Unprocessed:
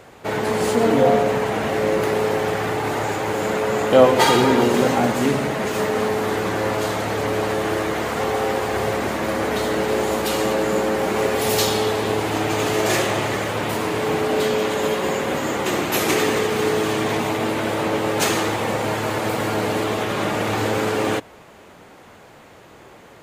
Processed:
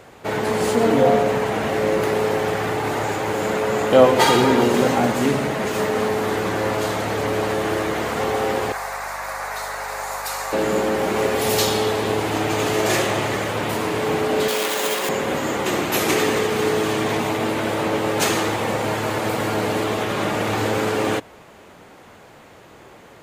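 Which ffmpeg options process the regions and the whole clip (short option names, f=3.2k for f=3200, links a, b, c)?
-filter_complex "[0:a]asettb=1/sr,asplit=3[a][b][c];[a]atrim=end=8.724[d];[b]atrim=start=8.72:end=10.53,asetpts=PTS-STARTPTS,afade=t=in:d=0.004:c=qsin,afade=t=out:st=1.806:d=0.004:c=qsin,highpass=f=750:w=0.5412,highpass=f=750:w=1.3066,aeval=exprs='val(0)+0.00562*(sin(2*PI*50*n/s)+sin(2*PI*2*50*n/s)/2+sin(2*PI*3*50*n/s)/3+sin(2*PI*4*50*n/s)/4+sin(2*PI*5*50*n/s)/5)':c=same,equalizer=f=3.1k:t=o:w=0.49:g=-14[e];[c]atrim=start=10.526[f];[d][e]acrossfade=d=0.004:c1=hsin:c2=qsin[g];[g][f]acrossfade=d=0.004:c1=qsin:c2=hsin,asettb=1/sr,asplit=3[h][i][j];[h]atrim=end=14.484[k];[i]atrim=start=14.48:end=15.09,asetpts=PTS-STARTPTS,afade=t=in:d=0.004:c=qsin,afade=t=out:st=0.606:d=0.004:c=qsin,highpass=120,adynamicsmooth=sensitivity=6:basefreq=2k,aemphasis=mode=production:type=riaa[l];[j]atrim=start=15.086[m];[k][l]acrossfade=d=0.004:c1=hsin:c2=qsin[n];[n][m]acrossfade=d=0.004:c1=qsin:c2=hsin"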